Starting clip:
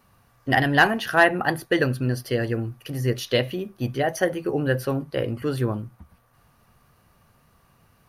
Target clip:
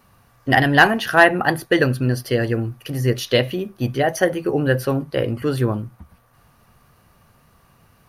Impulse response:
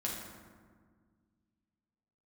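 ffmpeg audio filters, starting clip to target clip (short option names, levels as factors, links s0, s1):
-af "volume=1.68"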